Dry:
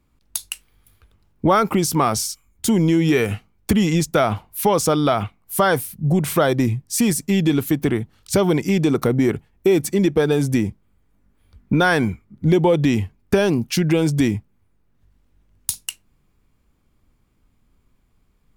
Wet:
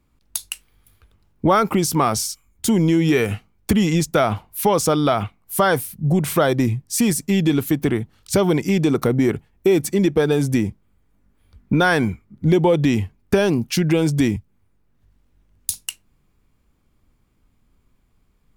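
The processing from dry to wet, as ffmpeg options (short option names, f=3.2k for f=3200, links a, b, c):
-filter_complex "[0:a]asettb=1/sr,asplit=3[a][b][c];[a]atrim=end=14.364[d];[b]atrim=start=14.36:end=15.72,asetpts=PTS-STARTPTS,afade=t=in:d=0.004:c=qsin,afade=t=out:st=1.356:d=0.004:c=qsin,acrossover=split=120|3000[e][f][g];[f]acompressor=threshold=-55dB:ratio=2:attack=3.2:release=140:knee=2.83:detection=peak[h];[e][h][g]amix=inputs=3:normalize=0[i];[c]atrim=start=15.716[j];[d][i]acrossfade=d=0.004:c1=hsin:c2=qsin[k];[k][j]acrossfade=d=0.004:c1=qsin:c2=hsin"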